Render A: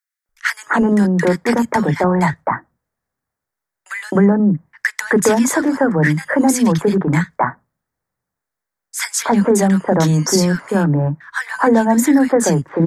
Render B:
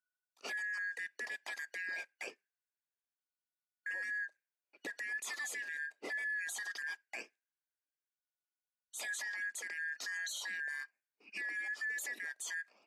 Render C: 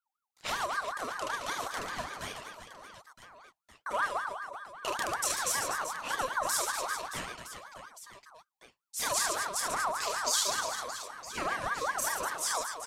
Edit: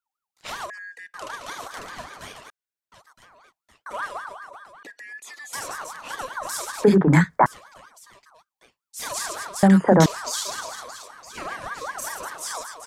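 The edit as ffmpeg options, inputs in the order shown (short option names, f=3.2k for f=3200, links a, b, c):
-filter_complex "[1:a]asplit=3[a][b][c];[0:a]asplit=2[d][e];[2:a]asplit=6[f][g][h][i][j][k];[f]atrim=end=0.702[l];[a]atrim=start=0.698:end=1.142[m];[g]atrim=start=1.138:end=2.502[n];[b]atrim=start=2.498:end=2.922[o];[h]atrim=start=2.918:end=4.832[p];[c]atrim=start=4.828:end=5.532[q];[i]atrim=start=5.528:end=6.842[r];[d]atrim=start=6.838:end=7.462[s];[j]atrim=start=7.458:end=9.632[t];[e]atrim=start=9.628:end=10.062[u];[k]atrim=start=10.058[v];[l][m]acrossfade=d=0.004:c1=hsin:c2=hsin[w];[w][n]acrossfade=d=0.004:c1=hsin:c2=hsin[x];[x][o]acrossfade=d=0.004:c1=hsin:c2=hsin[y];[y][p]acrossfade=d=0.004:c1=hsin:c2=hsin[z];[z][q]acrossfade=d=0.004:c1=hsin:c2=hsin[aa];[aa][r]acrossfade=d=0.004:c1=hsin:c2=hsin[ab];[ab][s]acrossfade=d=0.004:c1=hsin:c2=hsin[ac];[ac][t]acrossfade=d=0.004:c1=hsin:c2=hsin[ad];[ad][u]acrossfade=d=0.004:c1=hsin:c2=hsin[ae];[ae][v]acrossfade=d=0.004:c1=hsin:c2=hsin"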